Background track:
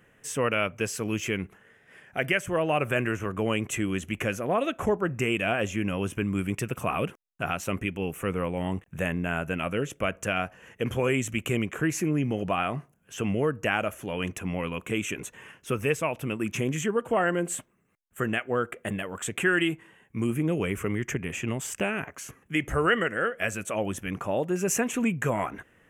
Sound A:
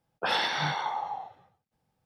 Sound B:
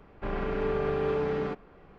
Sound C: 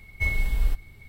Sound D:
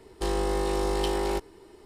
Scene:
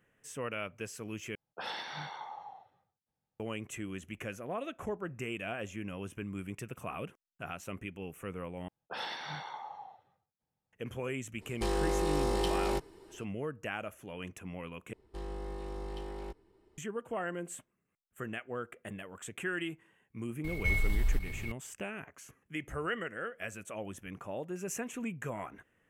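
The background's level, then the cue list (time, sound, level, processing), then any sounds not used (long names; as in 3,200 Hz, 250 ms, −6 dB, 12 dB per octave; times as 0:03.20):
background track −12 dB
0:01.35: overwrite with A −12.5 dB
0:08.68: overwrite with A −12 dB
0:11.40: mix in D −4 dB, fades 0.02 s
0:14.93: overwrite with D −16.5 dB + bass and treble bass +6 dB, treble −8 dB
0:20.44: mix in C −7 dB + envelope flattener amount 50%
not used: B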